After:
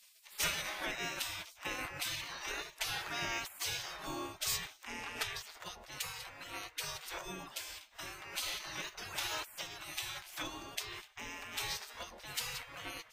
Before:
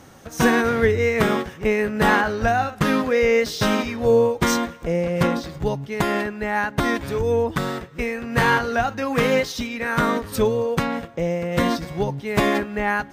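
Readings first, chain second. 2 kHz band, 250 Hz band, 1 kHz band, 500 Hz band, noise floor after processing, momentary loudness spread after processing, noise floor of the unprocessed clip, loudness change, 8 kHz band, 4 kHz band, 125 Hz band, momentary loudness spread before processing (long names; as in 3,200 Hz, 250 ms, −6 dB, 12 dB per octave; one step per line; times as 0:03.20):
−17.0 dB, −29.5 dB, −21.5 dB, −30.5 dB, −61 dBFS, 9 LU, −42 dBFS, −18.0 dB, −5.5 dB, −7.0 dB, −27.5 dB, 8 LU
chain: parametric band 290 Hz +3.5 dB 0.95 octaves
gate on every frequency bin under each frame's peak −25 dB weak
level −3 dB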